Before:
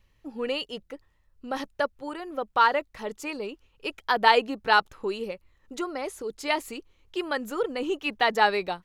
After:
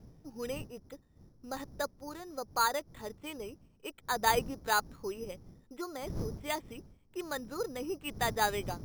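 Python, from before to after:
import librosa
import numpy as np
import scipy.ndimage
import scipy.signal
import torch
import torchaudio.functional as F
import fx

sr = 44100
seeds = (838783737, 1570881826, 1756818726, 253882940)

y = fx.dmg_wind(x, sr, seeds[0], corner_hz=180.0, level_db=-39.0)
y = np.repeat(scipy.signal.resample_poly(y, 1, 8), 8)[:len(y)]
y = y * 10.0 ** (-8.5 / 20.0)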